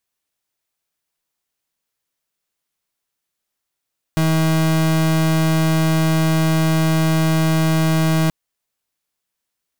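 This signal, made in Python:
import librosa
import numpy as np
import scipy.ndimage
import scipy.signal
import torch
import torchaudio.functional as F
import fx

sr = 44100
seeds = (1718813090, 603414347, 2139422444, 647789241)

y = fx.pulse(sr, length_s=4.13, hz=160.0, level_db=-16.0, duty_pct=36)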